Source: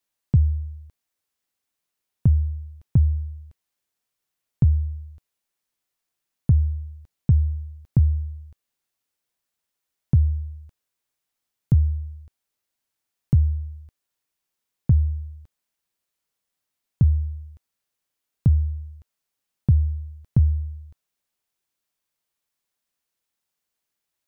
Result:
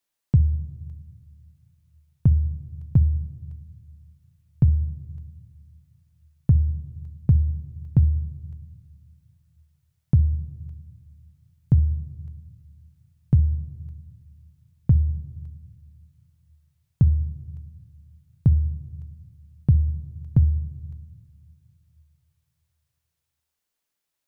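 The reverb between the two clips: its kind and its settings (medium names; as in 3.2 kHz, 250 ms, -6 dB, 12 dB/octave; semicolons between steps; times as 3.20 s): simulated room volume 1800 m³, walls mixed, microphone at 0.32 m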